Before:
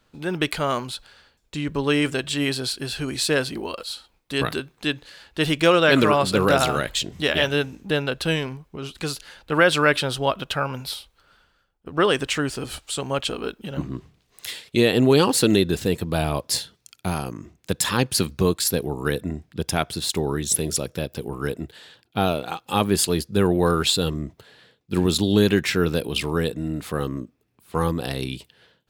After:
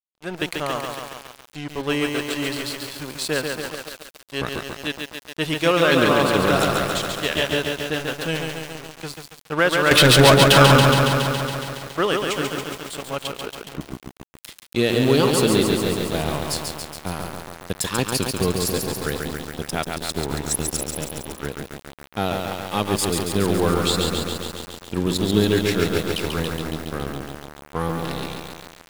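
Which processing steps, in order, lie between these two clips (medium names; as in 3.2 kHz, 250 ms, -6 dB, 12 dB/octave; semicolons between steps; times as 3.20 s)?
9.91–10.83 s: waveshaping leveller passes 5; crossover distortion -31 dBFS; bit-crushed delay 139 ms, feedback 80%, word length 6-bit, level -3.5 dB; trim -1 dB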